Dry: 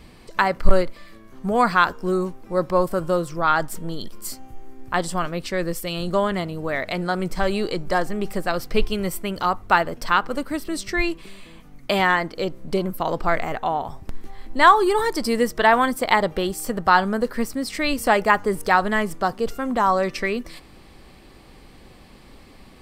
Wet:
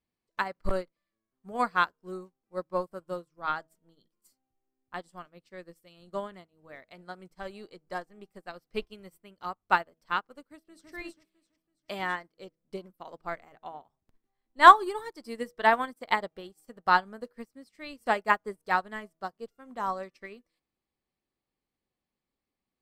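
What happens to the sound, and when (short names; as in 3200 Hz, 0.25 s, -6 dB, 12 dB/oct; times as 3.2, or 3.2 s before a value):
10.46–10.9 echo throw 0.33 s, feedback 55%, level -2 dB
whole clip: low shelf 62 Hz -11 dB; de-hum 161.2 Hz, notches 4; upward expander 2.5:1, over -36 dBFS; gain +1 dB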